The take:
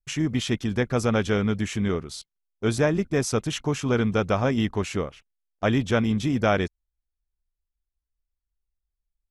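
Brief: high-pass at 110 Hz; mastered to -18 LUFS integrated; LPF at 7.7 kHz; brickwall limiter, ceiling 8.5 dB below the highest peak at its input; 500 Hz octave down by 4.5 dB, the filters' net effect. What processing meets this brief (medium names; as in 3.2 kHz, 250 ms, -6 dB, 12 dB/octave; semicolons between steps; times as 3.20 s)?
high-pass 110 Hz; low-pass 7.7 kHz; peaking EQ 500 Hz -5.5 dB; trim +10.5 dB; peak limiter -6.5 dBFS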